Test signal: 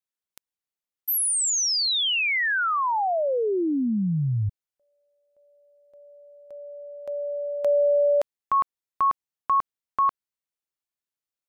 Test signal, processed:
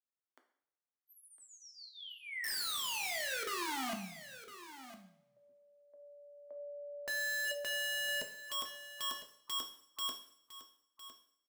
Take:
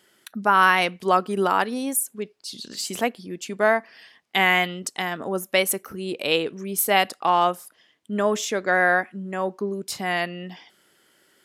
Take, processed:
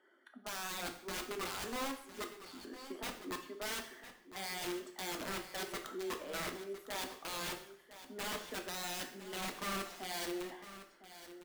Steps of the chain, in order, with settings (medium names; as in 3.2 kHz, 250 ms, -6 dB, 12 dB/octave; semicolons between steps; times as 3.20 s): coarse spectral quantiser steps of 15 dB; Chebyshev high-pass 250 Hz, order 5; band-stop 440 Hz, Q 12; reverse; compression 16:1, threshold -30 dBFS; reverse; Savitzky-Golay filter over 41 samples; integer overflow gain 31.5 dB; on a send: delay 1007 ms -13.5 dB; on the sum: two-slope reverb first 0.62 s, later 1.9 s, from -24 dB, DRR 4.5 dB; trim -4.5 dB